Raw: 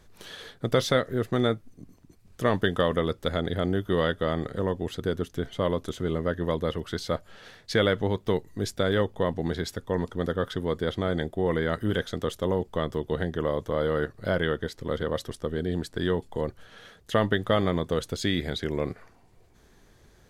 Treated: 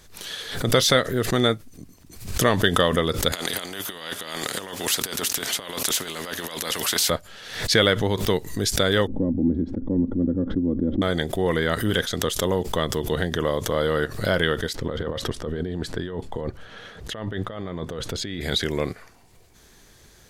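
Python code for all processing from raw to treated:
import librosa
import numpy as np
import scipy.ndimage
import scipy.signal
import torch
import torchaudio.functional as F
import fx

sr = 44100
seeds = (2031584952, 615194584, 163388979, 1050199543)

y = fx.chain(x, sr, fx.highpass(hz=250.0, slope=12),
    fx.over_compress(threshold_db=-33.0, ratio=-0.5),
    fx.spectral_comp(ratio=2.0), at=(3.32, 7.1))
y = fx.chain(y, sr, fx.lowpass_res(hz=270.0, q=2.3),
    fx.comb(ms=3.6, depth=0.57), at=(9.07, 11.02))
y = fx.chain(y, sr, fx.over_compress(threshold_db=-32.0, ratio=-1.0),
    fx.lowpass(hz=1300.0, slope=6), at=(14.75, 18.41))
y = fx.high_shelf(y, sr, hz=2300.0, db=11.0)
y = fx.pre_swell(y, sr, db_per_s=83.0)
y = y * 10.0 ** (2.5 / 20.0)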